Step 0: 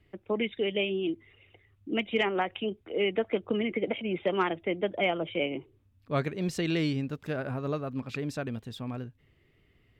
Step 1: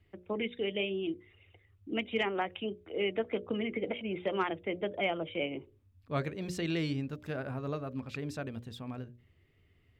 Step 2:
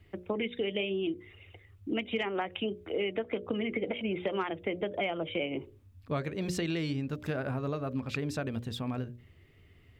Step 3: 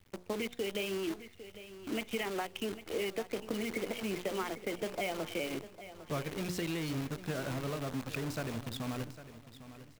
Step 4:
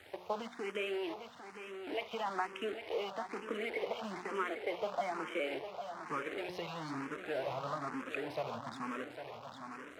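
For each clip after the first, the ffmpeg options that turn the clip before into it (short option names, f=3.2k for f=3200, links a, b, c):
-af "equalizer=f=85:t=o:w=0.33:g=11,bandreject=f=60:t=h:w=6,bandreject=f=120:t=h:w=6,bandreject=f=180:t=h:w=6,bandreject=f=240:t=h:w=6,bandreject=f=300:t=h:w=6,bandreject=f=360:t=h:w=6,bandreject=f=420:t=h:w=6,bandreject=f=480:t=h:w=6,bandreject=f=540:t=h:w=6,bandreject=f=600:t=h:w=6,volume=-4dB"
-af "acompressor=threshold=-37dB:ratio=6,volume=8dB"
-af "acrusher=bits=7:dc=4:mix=0:aa=0.000001,aecho=1:1:803|1606|2409:0.2|0.0658|0.0217,volume=-4dB"
-filter_complex "[0:a]aeval=exprs='val(0)+0.5*0.01*sgn(val(0))':c=same,bandpass=f=1k:t=q:w=0.94:csg=0,asplit=2[a][b];[b]afreqshift=1.1[c];[a][c]amix=inputs=2:normalize=1,volume=5.5dB"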